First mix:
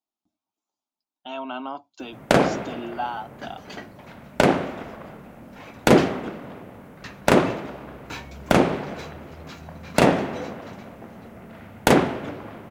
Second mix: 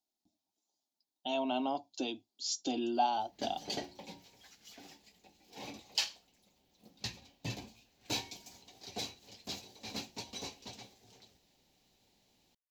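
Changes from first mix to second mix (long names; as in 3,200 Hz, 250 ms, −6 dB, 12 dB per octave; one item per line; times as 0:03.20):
first sound: muted
master: add drawn EQ curve 810 Hz 0 dB, 1,300 Hz −17 dB, 4,300 Hz +8 dB, 6,800 Hz +6 dB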